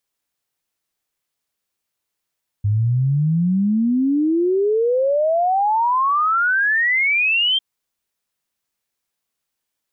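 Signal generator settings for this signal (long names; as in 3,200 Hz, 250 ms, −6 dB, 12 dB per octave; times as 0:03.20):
exponential sine sweep 100 Hz → 3,200 Hz 4.95 s −14.5 dBFS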